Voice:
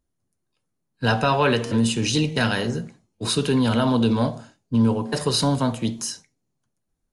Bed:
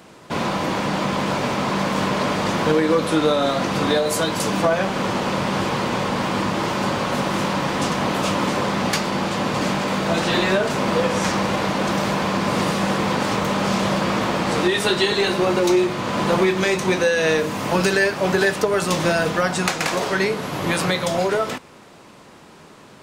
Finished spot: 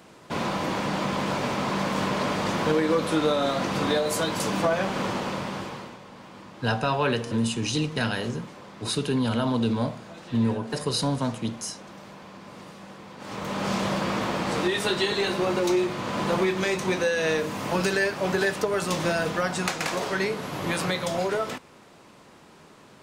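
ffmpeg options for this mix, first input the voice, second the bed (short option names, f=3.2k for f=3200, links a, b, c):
-filter_complex "[0:a]adelay=5600,volume=-5dB[a];[1:a]volume=12dB,afade=t=out:st=5.01:d=0.97:silence=0.125893,afade=t=in:st=13.17:d=0.54:silence=0.141254[b];[a][b]amix=inputs=2:normalize=0"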